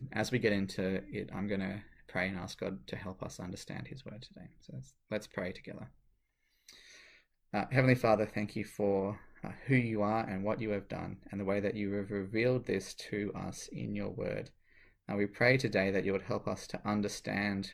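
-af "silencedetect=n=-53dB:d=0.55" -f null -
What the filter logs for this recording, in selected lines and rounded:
silence_start: 5.91
silence_end: 6.69 | silence_duration: 0.78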